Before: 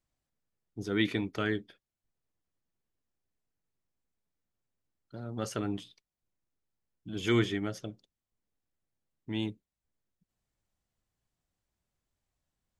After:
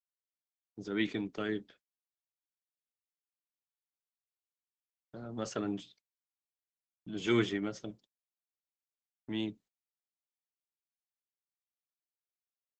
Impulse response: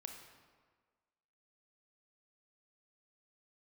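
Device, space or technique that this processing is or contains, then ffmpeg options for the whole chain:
video call: -filter_complex "[0:a]asettb=1/sr,asplit=3[a][b][c];[a]atrim=end=1.094[d];[b]atrim=start=1.09:end=1.56,asetpts=PTS-STARTPTS,afade=t=in:d=0.004:c=qsin,afade=t=out:st=0.466:d=0.004:c=qsin,equalizer=f=1.7k:w=0.68:g=-4.5[e];[c]atrim=start=1.556[f];[d][e]acrossfade=d=0.004:c1=hsin:c2=qsin[g];[g][f]acrossfade=d=0.004:c1=qsin:c2=hsin,highpass=f=130:w=0.5412,highpass=f=130:w=1.3066,dynaudnorm=f=180:g=13:m=4dB,agate=range=-49dB:threshold=-53dB:ratio=16:detection=peak,volume=-5dB" -ar 48000 -c:a libopus -b:a 12k

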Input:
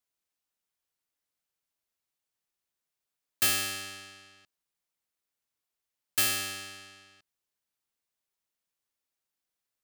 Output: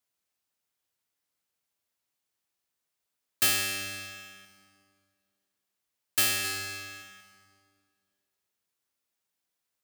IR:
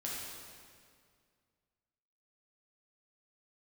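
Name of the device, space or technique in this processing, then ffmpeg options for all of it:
saturated reverb return: -filter_complex "[0:a]highpass=56,asettb=1/sr,asplit=3[a][b][c];[a]atrim=end=6.414[d];[b]atrim=start=6.41:end=7.02,asetpts=PTS-STARTPTS,afade=t=in:d=0.004:c=qsin,afade=t=out:st=0.606:d=0.004:c=qsin,asplit=2[e][f];[f]adelay=33,volume=-3dB[g];[e][g]amix=inputs=2:normalize=0,atrim=end_sample=26901[h];[c]atrim=start=7.016[i];[d][h]acrossfade=d=0.004:c1=hsin:c2=qsin[j];[j][i]acrossfade=d=0.004:c1=qsin:c2=hsin,asplit=2[k][l];[1:a]atrim=start_sample=2205[m];[l][m]afir=irnorm=-1:irlink=0,asoftclip=type=tanh:threshold=-30.5dB,volume=-5dB[n];[k][n]amix=inputs=2:normalize=0"

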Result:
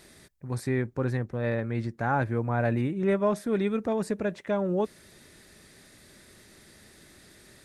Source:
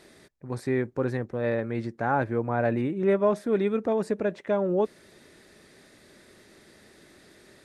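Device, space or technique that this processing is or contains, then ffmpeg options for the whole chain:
smiley-face EQ: -filter_complex "[0:a]asettb=1/sr,asplit=3[a][b][c];[a]atrim=end=0.684[d];[b]atrim=start=0.68:end=1.99,asetpts=PTS-STARTPTS,afade=t=in:d=0.004:c=qsin,afade=t=out:st=1.306:d=0.004:c=qsin,highshelf=f=5.7k:g=-5[e];[c]atrim=start=1.986[f];[d][e]acrossfade=d=0.004:c1=hsin:c2=qsin[g];[g][f]acrossfade=d=0.004:c1=qsin:c2=hsin,lowshelf=f=160:g=7,equalizer=f=410:t=o:w=1.9:g=-4.5,highshelf=f=7.3k:g=9"

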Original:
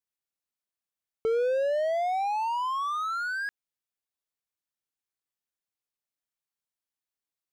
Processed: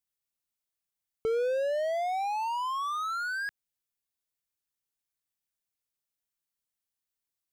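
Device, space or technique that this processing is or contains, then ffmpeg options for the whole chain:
smiley-face EQ: -af "lowshelf=f=140:g=5,equalizer=f=650:t=o:w=2.9:g=-3,highshelf=f=7.4k:g=5"

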